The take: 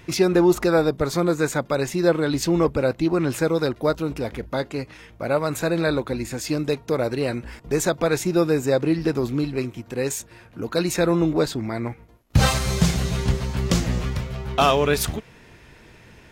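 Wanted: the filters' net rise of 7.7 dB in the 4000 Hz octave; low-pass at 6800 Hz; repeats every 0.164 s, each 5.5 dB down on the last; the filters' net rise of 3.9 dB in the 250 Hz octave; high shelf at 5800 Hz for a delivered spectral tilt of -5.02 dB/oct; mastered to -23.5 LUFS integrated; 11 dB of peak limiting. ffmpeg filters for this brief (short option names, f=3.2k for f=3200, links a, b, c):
-af "lowpass=6.8k,equalizer=f=250:t=o:g=6,equalizer=f=4k:t=o:g=8,highshelf=f=5.8k:g=4.5,alimiter=limit=-13dB:level=0:latency=1,aecho=1:1:164|328|492|656|820|984|1148:0.531|0.281|0.149|0.079|0.0419|0.0222|0.0118,volume=-1.5dB"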